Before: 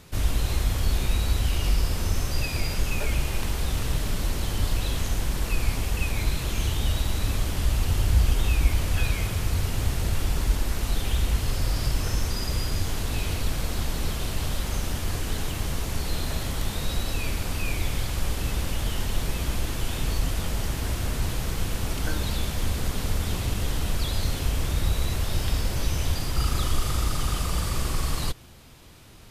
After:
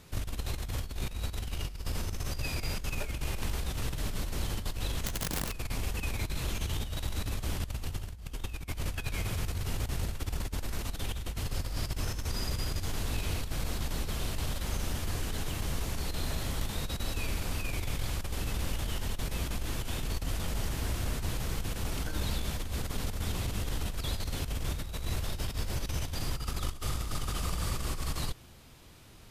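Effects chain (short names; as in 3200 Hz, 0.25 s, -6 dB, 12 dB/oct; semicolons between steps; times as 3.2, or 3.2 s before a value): negative-ratio compressor -25 dBFS, ratio -0.5; 5.06–5.54 wrapped overs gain 20.5 dB; gain -6.5 dB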